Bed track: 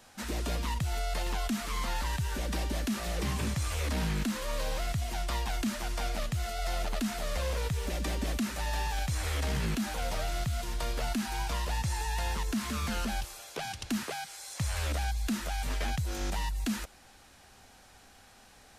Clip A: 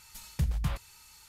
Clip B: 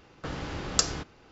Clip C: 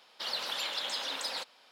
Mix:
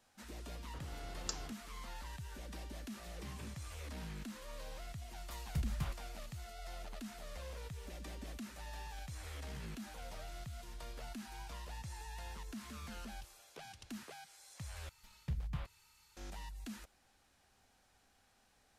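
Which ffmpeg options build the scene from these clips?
-filter_complex "[1:a]asplit=2[a][b];[0:a]volume=-15dB[c];[b]acrossover=split=4400[d][e];[e]acompressor=threshold=-58dB:ratio=4:attack=1:release=60[f];[d][f]amix=inputs=2:normalize=0[g];[c]asplit=2[h][i];[h]atrim=end=14.894[j];[g]atrim=end=1.28,asetpts=PTS-STARTPTS,volume=-10dB[k];[i]atrim=start=16.166[l];[2:a]atrim=end=1.31,asetpts=PTS-STARTPTS,volume=-17dB,afade=t=in:d=0.004:c=hsin,afade=t=out:st=1.306:d=0.004:c=hsin,adelay=500[m];[a]atrim=end=1.28,asetpts=PTS-STARTPTS,volume=-8dB,afade=t=in:d=0.004:c=hsin,afade=t=out:st=1.276:d=0.004:c=hsin,adelay=5160[n];[j][k]acrossfade=d=0.004:c1=hsin:c2=hsin[o];[o][l]acrossfade=d=0.004:c1=hsin:c2=hsin[p];[p][m][n]amix=inputs=3:normalize=0"

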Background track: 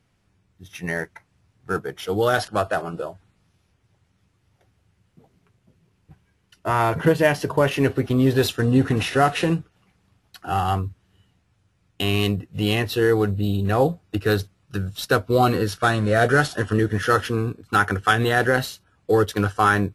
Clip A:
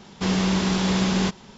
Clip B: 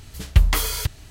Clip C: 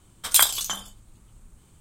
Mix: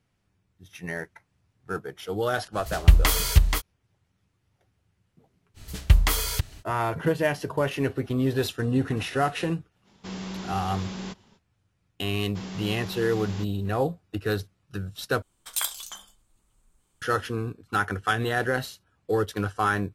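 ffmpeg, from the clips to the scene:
-filter_complex "[2:a]asplit=2[a][b];[1:a]asplit=2[c][d];[0:a]volume=-6.5dB[e];[a]aecho=1:1:480:0.596[f];[3:a]equalizer=f=110:w=0.43:g=-9[g];[e]asplit=2[h][i];[h]atrim=end=15.224[j];[g]atrim=end=1.8,asetpts=PTS-STARTPTS,volume=-10.5dB[k];[i]atrim=start=17.016[l];[f]atrim=end=1.1,asetpts=PTS-STARTPTS,afade=t=in:d=0.05,afade=t=out:st=1.05:d=0.05,adelay=2520[m];[b]atrim=end=1.1,asetpts=PTS-STARTPTS,volume=-2dB,afade=t=in:d=0.05,afade=t=out:st=1.05:d=0.05,adelay=5540[n];[c]atrim=end=1.57,asetpts=PTS-STARTPTS,volume=-13.5dB,afade=t=in:d=0.05,afade=t=out:st=1.52:d=0.05,adelay=9830[o];[d]atrim=end=1.57,asetpts=PTS-STARTPTS,volume=-15dB,afade=t=in:d=0.004:c=hsin,afade=t=out:st=1.566:d=0.004:c=hsin,adelay=12140[p];[j][k]acrossfade=d=0.004:c1=hsin:c2=hsin[q];[q][l]acrossfade=d=0.004:c1=hsin:c2=hsin[r];[r][m][n][o][p]amix=inputs=5:normalize=0"

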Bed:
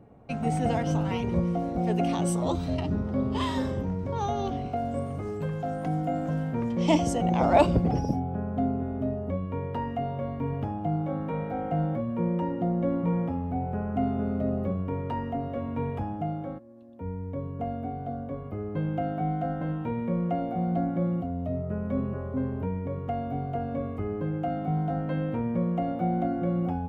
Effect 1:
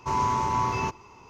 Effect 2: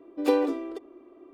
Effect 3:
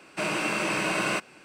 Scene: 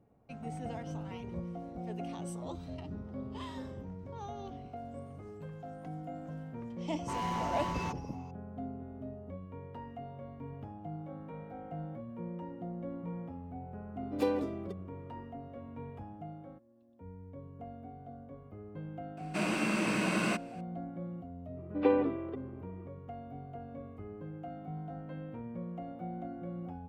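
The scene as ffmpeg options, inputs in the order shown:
-filter_complex "[2:a]asplit=2[a][b];[0:a]volume=-14dB[c];[1:a]asoftclip=type=hard:threshold=-26dB[d];[3:a]equalizer=f=220:w=1.8:g=13.5[e];[b]lowpass=f=2.8k:w=0.5412,lowpass=f=2.8k:w=1.3066[f];[d]atrim=end=1.29,asetpts=PTS-STARTPTS,volume=-8dB,afade=t=in:d=0.004:c=hsin,afade=t=out:st=1.286:d=0.004:c=hsin,adelay=7020[g];[a]atrim=end=1.33,asetpts=PTS-STARTPTS,volume=-8dB,afade=t=in:d=0.004:c=hsin,afade=t=out:st=1.326:d=0.004:c=hsin,adelay=13940[h];[e]atrim=end=1.44,asetpts=PTS-STARTPTS,volume=-7dB,afade=t=in:d=0.004:c=hsin,afade=t=out:st=1.436:d=0.004:c=hsin,adelay=19170[i];[f]atrim=end=1.33,asetpts=PTS-STARTPTS,volume=-4dB,afade=t=in:d=0.004:c=hsin,afade=t=out:st=1.326:d=0.004:c=hsin,adelay=21570[j];[c][g][h][i][j]amix=inputs=5:normalize=0"

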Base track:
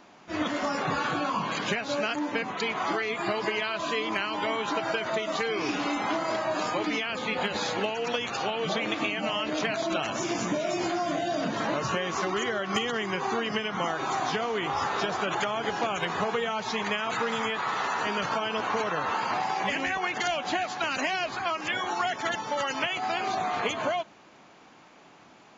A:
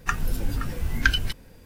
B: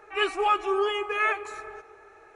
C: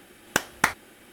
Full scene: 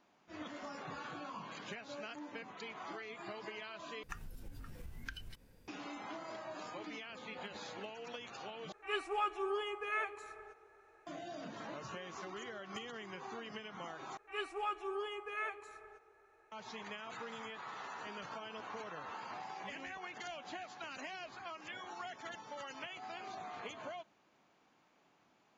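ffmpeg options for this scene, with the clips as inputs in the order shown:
-filter_complex "[2:a]asplit=2[a][b];[0:a]volume=-17.5dB[c];[1:a]acompressor=threshold=-33dB:ratio=6:attack=41:release=200:knee=1:detection=peak[d];[c]asplit=4[e][f][g][h];[e]atrim=end=4.034[i];[d]atrim=end=1.65,asetpts=PTS-STARTPTS,volume=-14dB[j];[f]atrim=start=5.676:end=8.724[k];[a]atrim=end=2.35,asetpts=PTS-STARTPTS,volume=-12dB[l];[g]atrim=start=11.066:end=14.174[m];[b]atrim=end=2.35,asetpts=PTS-STARTPTS,volume=-15dB[n];[h]atrim=start=16.516[o];[i][j]acrossfade=d=0.004:c1=hsin:c2=hsin[p];[p][k]acrossfade=d=0.004:c1=hsin:c2=hsin[q];[q][l]acrossfade=d=0.004:c1=hsin:c2=hsin[r];[r][m]acrossfade=d=0.004:c1=hsin:c2=hsin[s];[s][n]acrossfade=d=0.004:c1=hsin:c2=hsin[t];[t][o]acrossfade=d=0.004:c1=hsin:c2=hsin"

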